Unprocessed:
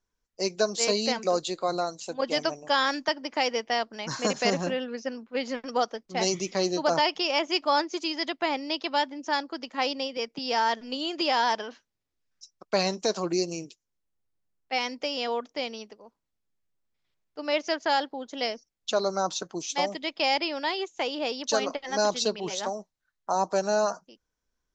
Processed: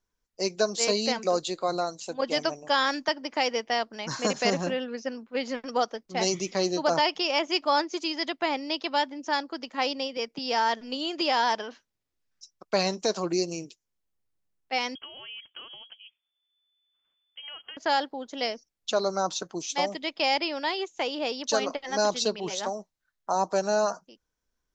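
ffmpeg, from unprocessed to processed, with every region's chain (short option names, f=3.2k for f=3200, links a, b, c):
-filter_complex "[0:a]asettb=1/sr,asplit=3[a][b][c];[a]atrim=end=14.954[d];[b]atrim=start=14.95:end=17.77,asetpts=PTS-STARTPTS,afade=t=in:d=0.004:c=qsin,afade=t=out:st=2.816:d=0.004:c=qsin,acompressor=threshold=-39dB:ratio=6:attack=3.2:release=140:knee=1:detection=peak,lowpass=f=3k:t=q:w=0.5098,lowpass=f=3k:t=q:w=0.6013,lowpass=f=3k:t=q:w=0.9,lowpass=f=3k:t=q:w=2.563,afreqshift=-3500[e];[c]atrim=start=17.766[f];[d][e]acrossfade=d=0.004:c1=hsin:c2=qsin[g];[g][f]acrossfade=d=0.004:c1=qsin:c2=hsin"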